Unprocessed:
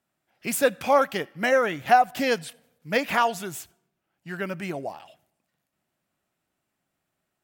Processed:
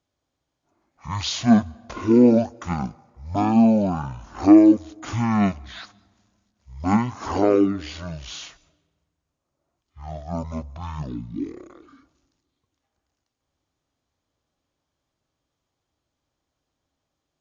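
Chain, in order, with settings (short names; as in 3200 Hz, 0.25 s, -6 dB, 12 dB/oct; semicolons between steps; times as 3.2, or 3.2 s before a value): dynamic EQ 650 Hz, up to +5 dB, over -32 dBFS, Q 1; speed mistake 78 rpm record played at 33 rpm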